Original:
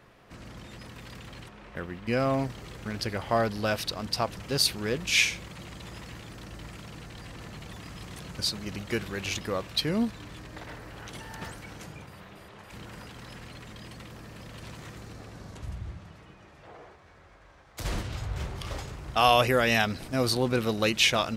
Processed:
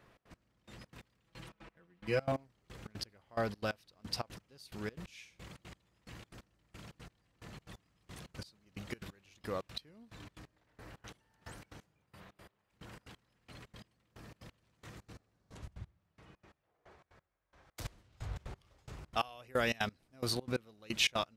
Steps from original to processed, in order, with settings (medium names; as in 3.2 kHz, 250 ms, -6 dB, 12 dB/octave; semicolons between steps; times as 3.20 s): 1.25–2.32 s: comb 6.1 ms, depth 87%; trance gate "xx.x...." 178 bpm -24 dB; trim -7.5 dB